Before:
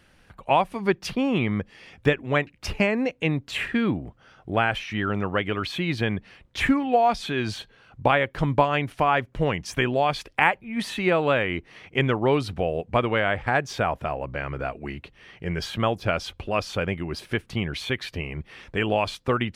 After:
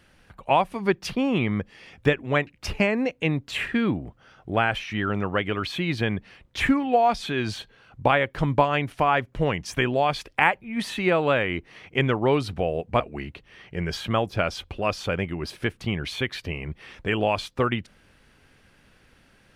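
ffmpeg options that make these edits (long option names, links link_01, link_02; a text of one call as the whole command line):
ffmpeg -i in.wav -filter_complex "[0:a]asplit=2[link_01][link_02];[link_01]atrim=end=13.002[link_03];[link_02]atrim=start=14.688[link_04];[link_03][link_04]acrossfade=duration=0.004:curve1=hsin:curve2=hsin" out.wav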